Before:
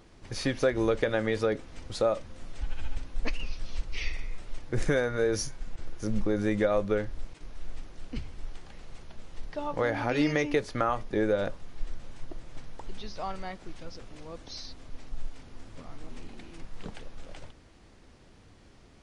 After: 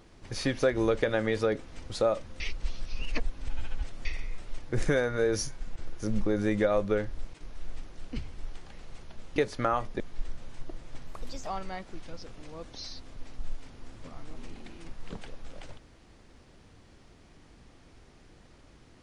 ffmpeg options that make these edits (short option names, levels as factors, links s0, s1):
-filter_complex "[0:a]asplit=7[s0][s1][s2][s3][s4][s5][s6];[s0]atrim=end=2.402[s7];[s1]atrim=start=2.398:end=4.052,asetpts=PTS-STARTPTS,areverse[s8];[s2]atrim=start=4.048:end=9.362[s9];[s3]atrim=start=10.518:end=11.162[s10];[s4]atrim=start=11.618:end=12.694[s11];[s5]atrim=start=12.69:end=13.2,asetpts=PTS-STARTPTS,asetrate=56448,aresample=44100,atrim=end_sample=17571,asetpts=PTS-STARTPTS[s12];[s6]atrim=start=13.196[s13];[s7][s8]acrossfade=d=0.004:c1=hsin:c2=hsin[s14];[s14][s9]acrossfade=d=0.004:c1=hsin:c2=hsin[s15];[s15][s10]acrossfade=d=0.004:c1=hsin:c2=hsin[s16];[s16][s11]acrossfade=d=0.004:c1=hsin:c2=hsin[s17];[s17][s12]acrossfade=d=0.004:c1=hsin:c2=hsin[s18];[s18][s13]acrossfade=d=0.004:c1=hsin:c2=hsin"